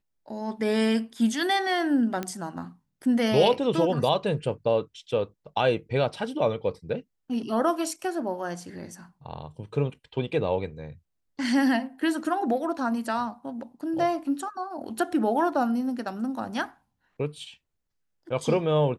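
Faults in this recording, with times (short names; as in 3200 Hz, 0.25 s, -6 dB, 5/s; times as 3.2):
2.23 pop -16 dBFS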